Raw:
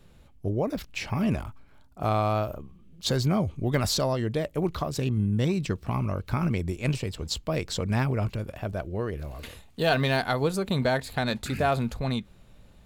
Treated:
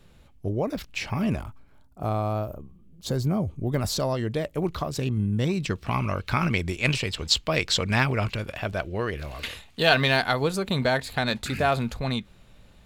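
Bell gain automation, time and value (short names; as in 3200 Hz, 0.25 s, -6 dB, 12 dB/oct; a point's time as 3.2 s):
bell 2800 Hz 2.9 oct
1.11 s +2.5 dB
2.19 s -8.5 dB
3.68 s -8.5 dB
4.15 s +1.5 dB
5.47 s +1.5 dB
6 s +12 dB
9.42 s +12 dB
10.44 s +4.5 dB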